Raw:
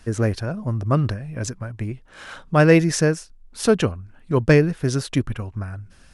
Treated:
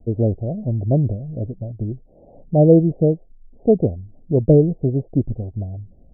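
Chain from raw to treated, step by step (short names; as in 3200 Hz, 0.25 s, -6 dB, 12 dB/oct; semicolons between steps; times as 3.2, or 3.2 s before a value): steep low-pass 730 Hz 72 dB/oct; mismatched tape noise reduction decoder only; gain +2.5 dB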